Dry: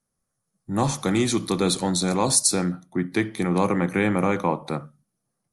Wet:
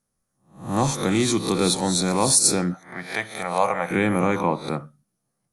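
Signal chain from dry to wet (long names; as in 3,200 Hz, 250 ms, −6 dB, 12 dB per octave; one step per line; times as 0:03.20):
peak hold with a rise ahead of every peak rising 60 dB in 0.42 s
0:02.74–0:03.91: low shelf with overshoot 460 Hz −11 dB, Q 3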